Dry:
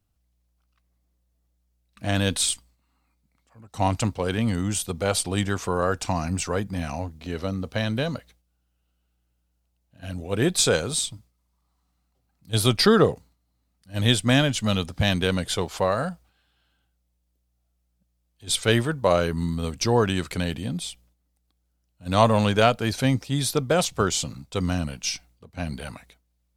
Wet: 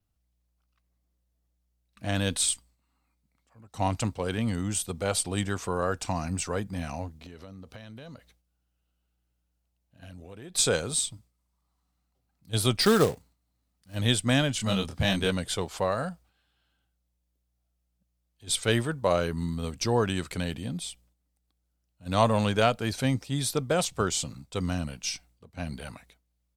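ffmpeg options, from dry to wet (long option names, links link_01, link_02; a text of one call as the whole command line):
ffmpeg -i in.wav -filter_complex "[0:a]asettb=1/sr,asplit=3[link_01][link_02][link_03];[link_01]atrim=end=7.224[link_04];[link_02]atrim=start=7.22:end=10.55,asetpts=PTS-STARTPTS,afade=type=in:duration=0.004:curve=qsin,afade=type=out:start_time=3.326:duration=0.004:curve=qsin,acompressor=threshold=-37dB:ratio=6:attack=3.2:release=140:knee=1:detection=peak[link_05];[link_03]atrim=start=10.546[link_06];[link_04][link_05]acrossfade=duration=0.004:curve1=hsin:curve2=qsin[link_07];[link_07][link_06]acrossfade=duration=0.004:curve1=qsin:curve2=hsin,asettb=1/sr,asplit=3[link_08][link_09][link_10];[link_08]atrim=end=12.814[link_11];[link_09]atrim=start=12.81:end=13.95,asetpts=PTS-STARTPTS,afade=type=in:duration=0.004:curve=qsin,afade=type=out:start_time=1.136:duration=0.004:curve=qsin,acrusher=bits=3:mode=log:mix=0:aa=0.000001[link_12];[link_10]atrim=start=13.946[link_13];[link_11][link_12]acrossfade=duration=0.004:curve1=hsin:curve2=qsin[link_14];[link_14][link_13]acrossfade=duration=0.004:curve1=qsin:curve2=hsin,asplit=3[link_15][link_16][link_17];[link_15]afade=type=out:start_time=14.58:duration=0.02[link_18];[link_16]asplit=2[link_19][link_20];[link_20]adelay=26,volume=-3.5dB[link_21];[link_19][link_21]amix=inputs=2:normalize=0,afade=type=in:start_time=14.58:duration=0.02,afade=type=out:start_time=15.3:duration=0.02[link_22];[link_17]afade=type=in:start_time=15.3:duration=0.02[link_23];[link_18][link_22][link_23]amix=inputs=3:normalize=0,adynamicequalizer=threshold=0.00447:dfrequency=8200:dqfactor=5.4:tfrequency=8200:tqfactor=5.4:attack=5:release=100:ratio=0.375:range=2.5:mode=boostabove:tftype=bell,volume=-4.5dB" out.wav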